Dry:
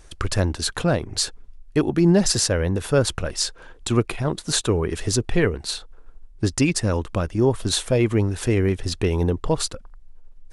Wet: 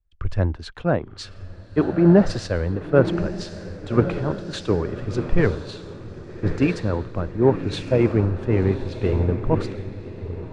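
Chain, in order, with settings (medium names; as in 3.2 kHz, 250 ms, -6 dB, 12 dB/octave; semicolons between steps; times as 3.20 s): low-pass 2 kHz 12 dB/octave; echo that smears into a reverb 1176 ms, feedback 61%, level -6 dB; three bands expanded up and down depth 100%; trim -1 dB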